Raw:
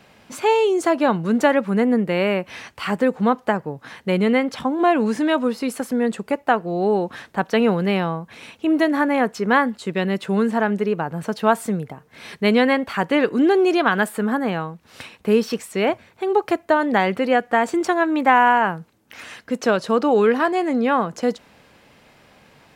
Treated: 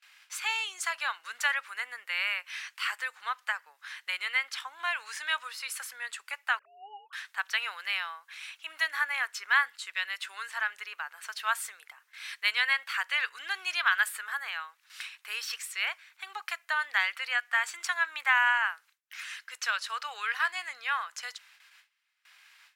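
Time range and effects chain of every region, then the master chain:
6.59–7.13 sine-wave speech + comb 1.6 ms, depth 33%
whole clip: gate with hold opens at -41 dBFS; HPF 1400 Hz 24 dB/oct; gain -1.5 dB

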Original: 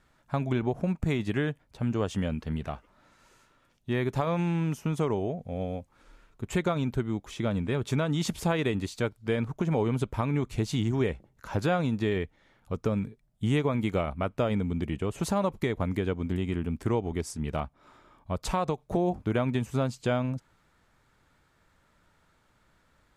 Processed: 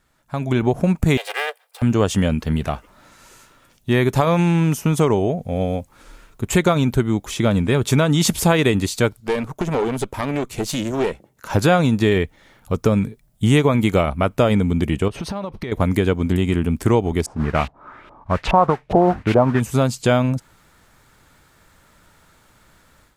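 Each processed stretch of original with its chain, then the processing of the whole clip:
1.17–1.82 minimum comb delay 2.5 ms + steep high-pass 500 Hz 48 dB/oct + bell 6400 Hz -6.5 dB 0.47 oct
9.2–11.5 HPF 180 Hz 6 dB/oct + bell 480 Hz +2.5 dB 2.3 oct + tube stage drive 25 dB, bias 0.75
15.08–15.72 short-mantissa float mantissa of 6-bit + compressor 12:1, threshold -34 dBFS + polynomial smoothing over 15 samples
17.26–19.6 modulation noise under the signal 11 dB + LFO low-pass saw up 2.4 Hz 690–2900 Hz
whole clip: high shelf 6900 Hz +11 dB; AGC gain up to 11.5 dB

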